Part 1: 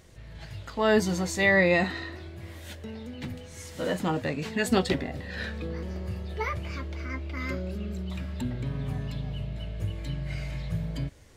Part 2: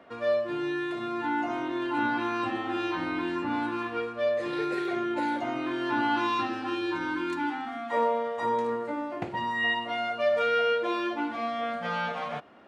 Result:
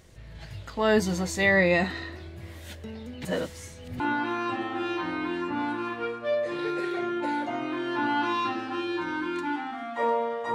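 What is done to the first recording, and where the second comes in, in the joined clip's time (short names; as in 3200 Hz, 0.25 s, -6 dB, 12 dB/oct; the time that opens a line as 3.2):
part 1
3.25–4 reverse
4 switch to part 2 from 1.94 s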